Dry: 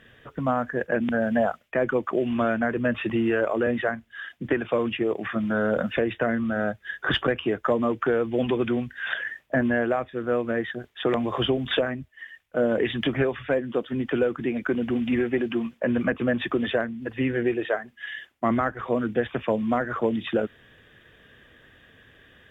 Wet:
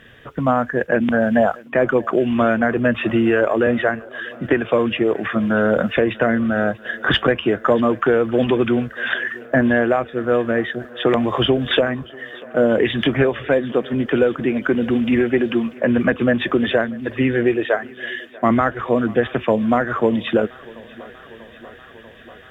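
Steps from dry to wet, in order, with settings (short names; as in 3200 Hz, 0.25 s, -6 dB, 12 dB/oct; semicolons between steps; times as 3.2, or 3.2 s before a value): thinning echo 0.64 s, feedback 79%, high-pass 190 Hz, level -22 dB; gain +7 dB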